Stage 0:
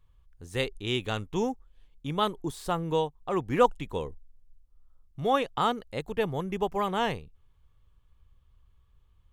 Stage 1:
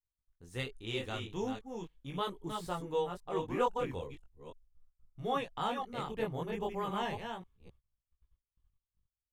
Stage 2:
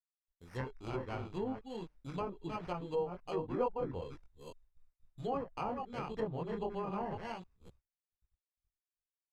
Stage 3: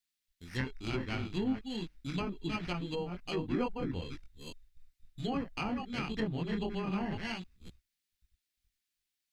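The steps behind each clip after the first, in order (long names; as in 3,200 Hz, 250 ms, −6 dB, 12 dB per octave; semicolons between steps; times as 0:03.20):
delay that plays each chunk backwards 265 ms, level −5.5 dB; noise gate −53 dBFS, range −29 dB; multi-voice chorus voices 2, 0.39 Hz, delay 20 ms, depth 3.5 ms; level −5.5 dB
downward expander −59 dBFS; decimation without filtering 12×; treble cut that deepens with the level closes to 910 Hz, closed at −31 dBFS; level −1 dB
octave-band graphic EQ 125/250/500/1,000/2,000/4,000 Hz −4/+4/−11/−10/+4/+5 dB; level +8 dB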